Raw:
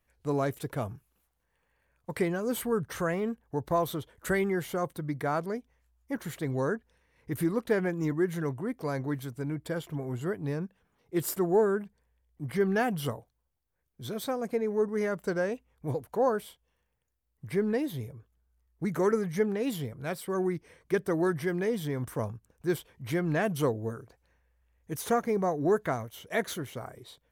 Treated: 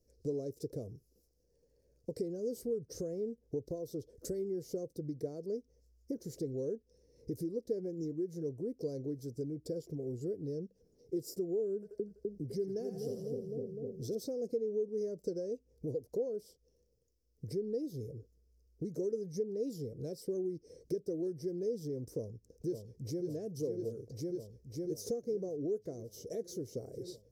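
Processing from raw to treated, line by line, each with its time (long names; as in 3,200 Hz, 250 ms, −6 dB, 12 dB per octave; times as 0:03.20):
0:11.74–0:14.15: echo with a time of its own for lows and highs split 560 Hz, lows 253 ms, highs 83 ms, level −5 dB
0:22.16–0:23.25: delay throw 550 ms, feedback 65%, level −4 dB
whole clip: downward compressor 8 to 1, threshold −42 dBFS; drawn EQ curve 200 Hz 0 dB, 480 Hz +9 dB, 830 Hz −19 dB, 1,200 Hz −28 dB, 3,300 Hz −21 dB, 5,200 Hz +8 dB, 8,700 Hz −6 dB; level +2.5 dB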